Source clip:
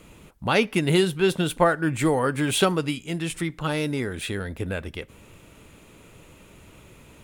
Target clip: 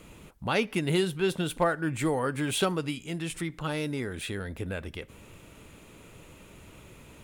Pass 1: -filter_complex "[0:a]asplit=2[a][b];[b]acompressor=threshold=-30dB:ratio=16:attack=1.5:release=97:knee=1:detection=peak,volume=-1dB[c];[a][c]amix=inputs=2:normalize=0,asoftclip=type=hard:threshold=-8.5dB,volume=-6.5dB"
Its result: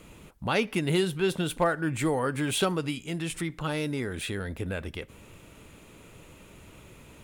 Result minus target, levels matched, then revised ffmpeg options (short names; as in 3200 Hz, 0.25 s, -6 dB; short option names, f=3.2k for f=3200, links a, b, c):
compressor: peak gain reduction -7 dB
-filter_complex "[0:a]asplit=2[a][b];[b]acompressor=threshold=-37.5dB:ratio=16:attack=1.5:release=97:knee=1:detection=peak,volume=-1dB[c];[a][c]amix=inputs=2:normalize=0,asoftclip=type=hard:threshold=-8.5dB,volume=-6.5dB"